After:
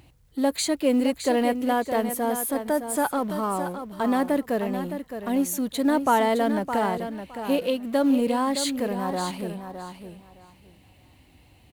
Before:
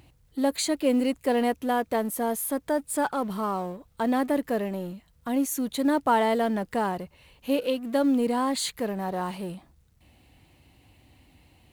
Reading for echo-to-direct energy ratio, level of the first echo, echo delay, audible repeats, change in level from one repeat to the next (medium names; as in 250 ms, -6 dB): -9.0 dB, -9.0 dB, 614 ms, 2, -15.0 dB